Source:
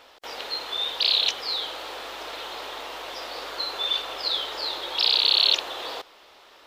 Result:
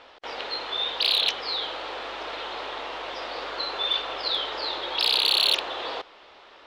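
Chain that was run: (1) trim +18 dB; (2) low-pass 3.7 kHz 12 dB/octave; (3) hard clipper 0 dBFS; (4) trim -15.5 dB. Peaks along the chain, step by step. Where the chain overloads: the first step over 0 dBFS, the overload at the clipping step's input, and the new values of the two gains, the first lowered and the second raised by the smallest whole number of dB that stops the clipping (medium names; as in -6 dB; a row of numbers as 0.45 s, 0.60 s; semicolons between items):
+9.0 dBFS, +6.5 dBFS, 0.0 dBFS, -15.5 dBFS; step 1, 6.5 dB; step 1 +11 dB, step 4 -8.5 dB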